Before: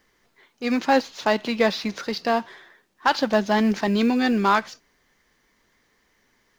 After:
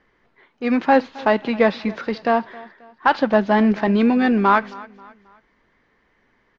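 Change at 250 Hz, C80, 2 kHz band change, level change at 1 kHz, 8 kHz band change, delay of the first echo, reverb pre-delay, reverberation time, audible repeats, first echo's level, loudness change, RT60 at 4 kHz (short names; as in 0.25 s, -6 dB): +4.0 dB, none, +2.5 dB, +4.0 dB, n/a, 0.268 s, none, none, 2, -21.0 dB, +3.5 dB, none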